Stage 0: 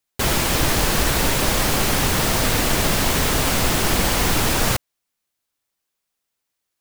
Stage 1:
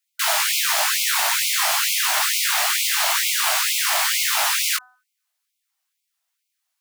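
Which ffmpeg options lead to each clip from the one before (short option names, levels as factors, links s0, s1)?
-af "flanger=delay=17.5:depth=2.3:speed=1.4,bandreject=f=251.1:t=h:w=4,bandreject=f=502.2:t=h:w=4,bandreject=f=753.3:t=h:w=4,bandreject=f=1004.4:t=h:w=4,bandreject=f=1255.5:t=h:w=4,bandreject=f=1506.6:t=h:w=4,bandreject=f=1757.7:t=h:w=4,afftfilt=real='re*gte(b*sr/1024,570*pow(2100/570,0.5+0.5*sin(2*PI*2.2*pts/sr)))':imag='im*gte(b*sr/1024,570*pow(2100/570,0.5+0.5*sin(2*PI*2.2*pts/sr)))':win_size=1024:overlap=0.75,volume=1.88"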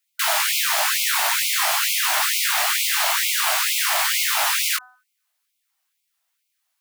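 -filter_complex "[0:a]asplit=2[s0][s1];[s1]alimiter=limit=0.133:level=0:latency=1:release=87,volume=1.33[s2];[s0][s2]amix=inputs=2:normalize=0,equalizer=f=6200:t=o:w=1.6:g=-2.5,volume=0.668"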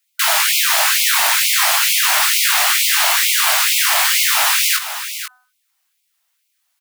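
-af "highpass=f=770:p=1,aecho=1:1:493:0.299,volume=2"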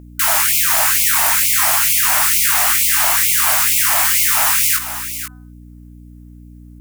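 -af "equalizer=f=3900:t=o:w=1.3:g=-9,aeval=exprs='val(0)+0.0316*(sin(2*PI*60*n/s)+sin(2*PI*2*60*n/s)/2+sin(2*PI*3*60*n/s)/3+sin(2*PI*4*60*n/s)/4+sin(2*PI*5*60*n/s)/5)':c=same,bass=f=250:g=-8,treble=f=4000:g=4"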